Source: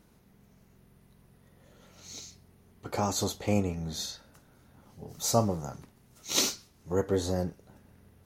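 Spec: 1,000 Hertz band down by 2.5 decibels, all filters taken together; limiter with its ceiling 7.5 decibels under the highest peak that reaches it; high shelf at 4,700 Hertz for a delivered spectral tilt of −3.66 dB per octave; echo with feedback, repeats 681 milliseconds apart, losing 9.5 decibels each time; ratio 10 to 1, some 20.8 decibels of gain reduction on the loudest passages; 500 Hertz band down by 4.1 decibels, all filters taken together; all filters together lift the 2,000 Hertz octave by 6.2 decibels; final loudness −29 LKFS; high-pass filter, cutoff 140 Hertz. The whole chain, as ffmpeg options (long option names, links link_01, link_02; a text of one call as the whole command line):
ffmpeg -i in.wav -af "highpass=140,equalizer=frequency=500:width_type=o:gain=-4.5,equalizer=frequency=1000:width_type=o:gain=-3.5,equalizer=frequency=2000:width_type=o:gain=7.5,highshelf=frequency=4700:gain=5.5,acompressor=threshold=-40dB:ratio=10,alimiter=level_in=11dB:limit=-24dB:level=0:latency=1,volume=-11dB,aecho=1:1:681|1362|2043|2724:0.335|0.111|0.0365|0.012,volume=17.5dB" out.wav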